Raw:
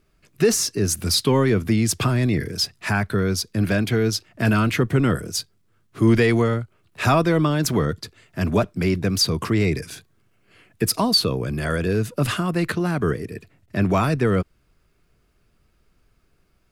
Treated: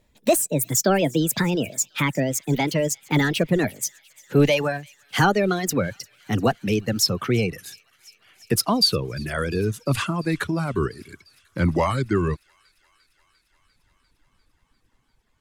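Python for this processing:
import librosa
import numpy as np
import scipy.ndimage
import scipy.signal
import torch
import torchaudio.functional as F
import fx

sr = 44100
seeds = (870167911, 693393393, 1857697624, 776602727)

y = fx.speed_glide(x, sr, from_pct=150, to_pct=67)
y = fx.dereverb_blind(y, sr, rt60_s=1.6)
y = fx.echo_wet_highpass(y, sr, ms=348, feedback_pct=77, hz=2400.0, wet_db=-23.5)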